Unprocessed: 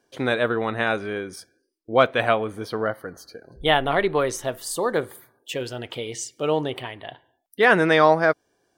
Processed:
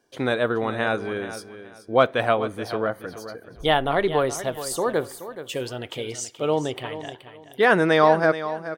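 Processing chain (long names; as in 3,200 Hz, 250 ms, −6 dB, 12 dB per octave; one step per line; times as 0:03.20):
dynamic equaliser 2,300 Hz, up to −4 dB, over −35 dBFS, Q 1.2
on a send: repeating echo 426 ms, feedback 25%, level −12.5 dB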